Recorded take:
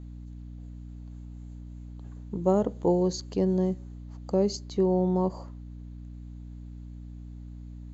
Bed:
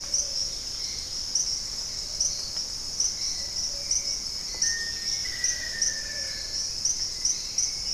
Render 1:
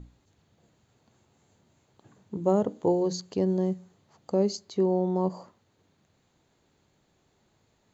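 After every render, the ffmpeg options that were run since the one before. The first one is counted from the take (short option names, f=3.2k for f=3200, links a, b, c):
-af "bandreject=f=60:t=h:w=6,bandreject=f=120:t=h:w=6,bandreject=f=180:t=h:w=6,bandreject=f=240:t=h:w=6,bandreject=f=300:t=h:w=6"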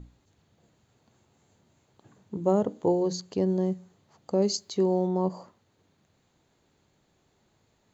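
-filter_complex "[0:a]asettb=1/sr,asplit=3[a][b][c];[a]atrim=end=4.424[d];[b]atrim=start=4.42:end=5.07,asetpts=PTS-STARTPTS,afade=t=in:d=0.004:c=qsin,afade=t=out:st=0.646:d=0.004:c=qsin,highshelf=f=2.9k:g=8.5[e];[c]atrim=start=5.066[f];[d][e]acrossfade=d=0.004:c1=hsin:c2=qsin[g];[g][f]acrossfade=d=0.004:c1=qsin:c2=hsin"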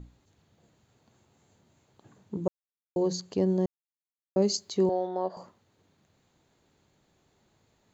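-filter_complex "[0:a]asettb=1/sr,asplit=3[a][b][c];[a]atrim=end=4.894[d];[b]atrim=start=4.89:end=5.37,asetpts=PTS-STARTPTS,afade=t=in:d=0.004:c=qsin,afade=t=out:st=0.476:d=0.004:c=qsin,highpass=480,equalizer=f=660:t=q:w=4:g=7,equalizer=f=1k:t=q:w=4:g=-5,equalizer=f=1.6k:t=q:w=4:g=9,equalizer=f=2.4k:t=q:w=4:g=-6,equalizer=f=3.6k:t=q:w=4:g=4,lowpass=f=4.9k:w=0.5412,lowpass=f=4.9k:w=1.3066[e];[c]atrim=start=5.366[f];[d][e]acrossfade=d=0.004:c1=hsin:c2=qsin[g];[g][f]acrossfade=d=0.004:c1=qsin:c2=hsin,asplit=5[h][i][j][k][l];[h]atrim=end=2.48,asetpts=PTS-STARTPTS,afade=t=out:st=2.476:d=0.004:c=hsin[m];[i]atrim=start=2.48:end=2.96,asetpts=PTS-STARTPTS,volume=0[n];[j]atrim=start=2.96:end=3.66,asetpts=PTS-STARTPTS,afade=t=in:d=0.004:c=hsin,afade=t=out:st=0.696:d=0.004:c=hsin[o];[k]atrim=start=3.66:end=4.36,asetpts=PTS-STARTPTS,volume=0[p];[l]atrim=start=4.36,asetpts=PTS-STARTPTS,afade=t=in:d=0.004:c=hsin[q];[m][n][o][p][q]concat=n=5:v=0:a=1"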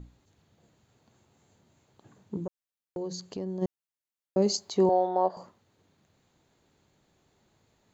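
-filter_complex "[0:a]asplit=3[a][b][c];[a]afade=t=out:st=2.43:d=0.02[d];[b]acompressor=threshold=-35dB:ratio=2.5:attack=3.2:release=140:knee=1:detection=peak,afade=t=in:st=2.43:d=0.02,afade=t=out:st=3.61:d=0.02[e];[c]afade=t=in:st=3.61:d=0.02[f];[d][e][f]amix=inputs=3:normalize=0,asettb=1/sr,asplit=3[g][h][i];[g]atrim=end=4.464[j];[h]atrim=start=4.46:end=5.31,asetpts=PTS-STARTPTS,afade=t=in:d=0.004:c=qsin,afade=t=out:st=0.846:d=0.004:c=qsin,equalizer=f=820:w=1.2:g=8.5[k];[i]atrim=start=5.306[l];[j][k]acrossfade=d=0.004:c1=hsin:c2=qsin[m];[m][l]acrossfade=d=0.004:c1=qsin:c2=hsin"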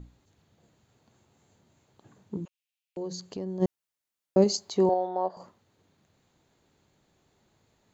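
-filter_complex "[0:a]asettb=1/sr,asplit=3[a][b][c];[a]atrim=end=2.454[d];[b]atrim=start=2.45:end=2.97,asetpts=PTS-STARTPTS,afade=t=in:d=0.004:c=qsin,afade=t=out:st=0.516:d=0.004:c=qsin,highpass=f=2.6k:t=q:w=3.7[e];[c]atrim=start=2.966[f];[d][e]acrossfade=d=0.004:c1=hsin:c2=qsin[g];[g][f]acrossfade=d=0.004:c1=qsin:c2=hsin,asplit=5[h][i][j][k][l];[h]atrim=end=3.602[m];[i]atrim=start=3.598:end=4.442,asetpts=PTS-STARTPTS,volume=4.5dB[n];[j]atrim=start=4.438:end=4.942[o];[k]atrim=start=4.938:end=5.402,asetpts=PTS-STARTPTS,volume=-3.5dB[p];[l]atrim=start=5.398[q];[m][n]acrossfade=d=0.004:c1=hsin:c2=hsin[r];[r][o]acrossfade=d=0.004:c1=hsin:c2=hsin[s];[s][p]acrossfade=d=0.004:c1=hsin:c2=hsin[t];[t][q]acrossfade=d=0.004:c1=hsin:c2=hsin"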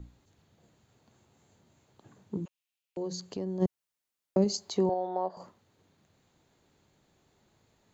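-filter_complex "[0:a]acrossover=split=220[a][b];[b]acompressor=threshold=-28dB:ratio=2.5[c];[a][c]amix=inputs=2:normalize=0"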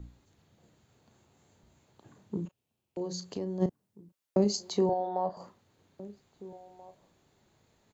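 -filter_complex "[0:a]asplit=2[a][b];[b]adelay=34,volume=-11.5dB[c];[a][c]amix=inputs=2:normalize=0,asplit=2[d][e];[e]adelay=1633,volume=-19dB,highshelf=f=4k:g=-36.7[f];[d][f]amix=inputs=2:normalize=0"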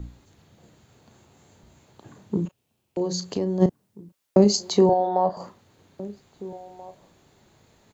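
-af "volume=9.5dB"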